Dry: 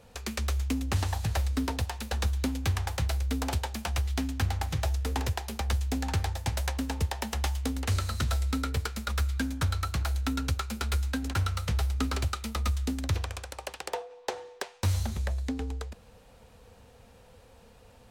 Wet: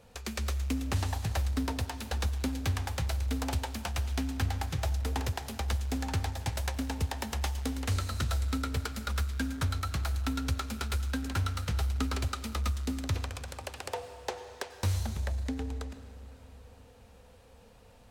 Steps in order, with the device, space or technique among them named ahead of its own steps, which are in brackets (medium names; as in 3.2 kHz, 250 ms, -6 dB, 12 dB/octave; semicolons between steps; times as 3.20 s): saturated reverb return (on a send at -8.5 dB: reverberation RT60 3.0 s, pre-delay 88 ms + saturation -31 dBFS, distortion -10 dB); on the sum: trim -2.5 dB